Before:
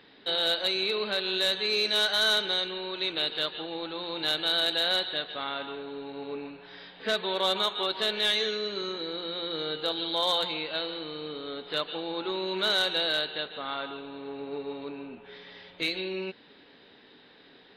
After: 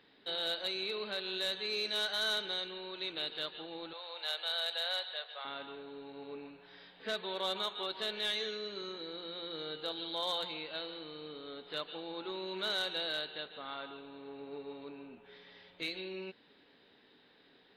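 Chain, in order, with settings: 3.93–5.45 s: steep high-pass 500 Hz 36 dB/octave; trim -9 dB

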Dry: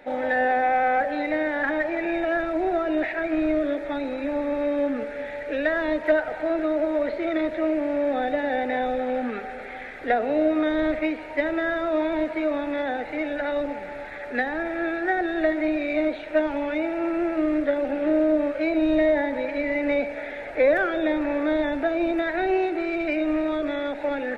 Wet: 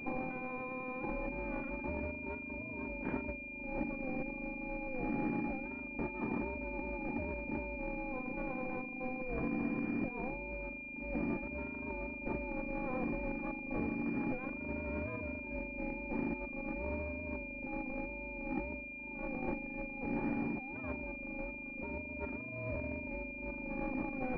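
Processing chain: FFT filter 110 Hz 0 dB, 270 Hz -21 dB, 590 Hz -26 dB; compressor with a negative ratio -53 dBFS, ratio -1; ring modulator 260 Hz; class-D stage that switches slowly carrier 2.4 kHz; trim +15 dB

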